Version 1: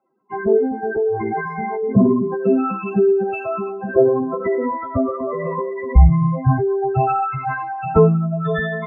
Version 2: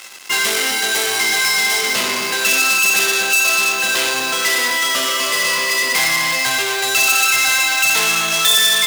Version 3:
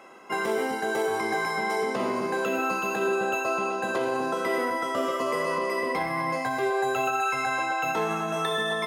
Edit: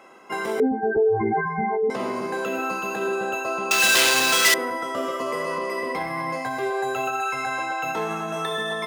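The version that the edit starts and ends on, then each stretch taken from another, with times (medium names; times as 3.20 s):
3
0.60–1.90 s: from 1
3.71–4.54 s: from 2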